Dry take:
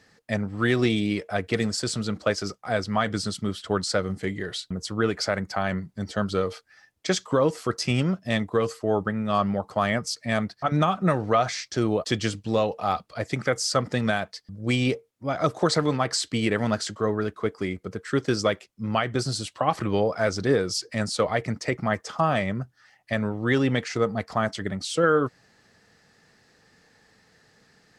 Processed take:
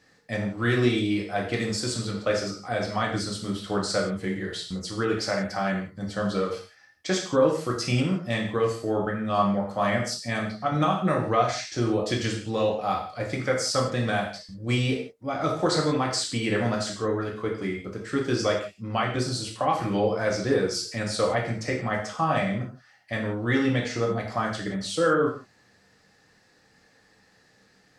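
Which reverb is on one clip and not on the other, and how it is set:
reverb whose tail is shaped and stops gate 200 ms falling, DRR −1.5 dB
level −4.5 dB

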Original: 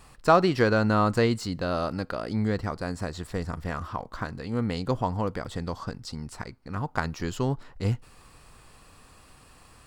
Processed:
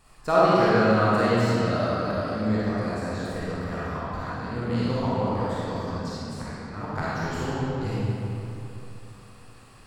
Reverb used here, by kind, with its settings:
comb and all-pass reverb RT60 3.1 s, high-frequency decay 0.7×, pre-delay 5 ms, DRR −9.5 dB
level −7.5 dB

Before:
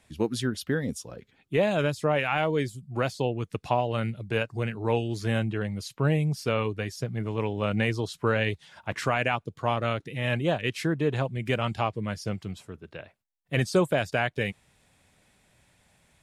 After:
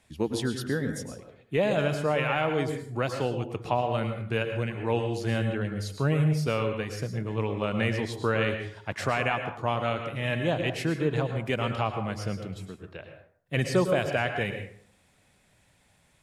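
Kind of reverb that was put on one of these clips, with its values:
dense smooth reverb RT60 0.57 s, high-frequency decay 0.55×, pre-delay 95 ms, DRR 6 dB
level −1.5 dB

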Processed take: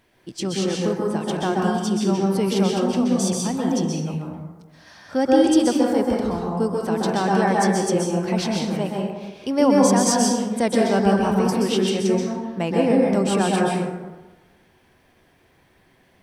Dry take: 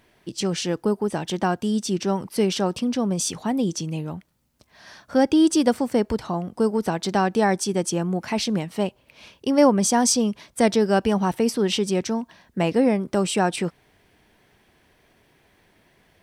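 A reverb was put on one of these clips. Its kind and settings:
dense smooth reverb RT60 1.2 s, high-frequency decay 0.45×, pre-delay 115 ms, DRR −2.5 dB
level −3 dB

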